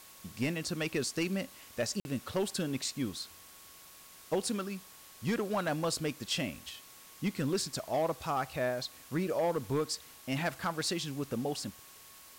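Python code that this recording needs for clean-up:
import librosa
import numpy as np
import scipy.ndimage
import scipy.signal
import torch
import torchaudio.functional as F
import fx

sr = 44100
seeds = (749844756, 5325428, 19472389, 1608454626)

y = fx.fix_declip(x, sr, threshold_db=-24.5)
y = fx.notch(y, sr, hz=1100.0, q=30.0)
y = fx.fix_interpolate(y, sr, at_s=(2.0,), length_ms=51.0)
y = fx.noise_reduce(y, sr, print_start_s=3.77, print_end_s=4.27, reduce_db=25.0)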